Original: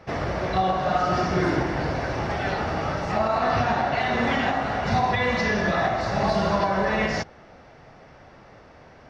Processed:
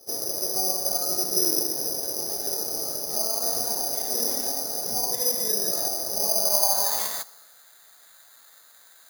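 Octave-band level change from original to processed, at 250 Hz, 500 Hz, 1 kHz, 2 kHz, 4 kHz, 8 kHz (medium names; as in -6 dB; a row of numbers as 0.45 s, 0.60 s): -12.5 dB, -8.0 dB, -12.5 dB, -20.5 dB, +6.5 dB, no reading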